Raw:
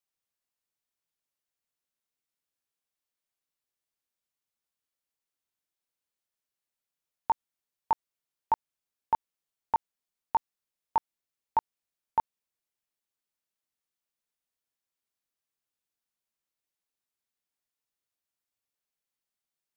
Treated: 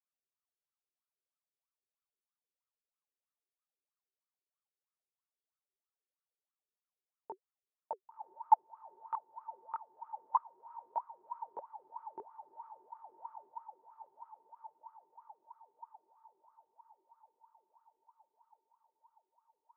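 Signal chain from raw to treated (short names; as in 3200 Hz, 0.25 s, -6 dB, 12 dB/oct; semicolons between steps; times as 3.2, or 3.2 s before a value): diffused feedback echo 1.072 s, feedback 63%, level -11.5 dB; 10.35–11.58 frequency shift +31 Hz; wah 3.1 Hz 370–1300 Hz, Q 14; gain +6 dB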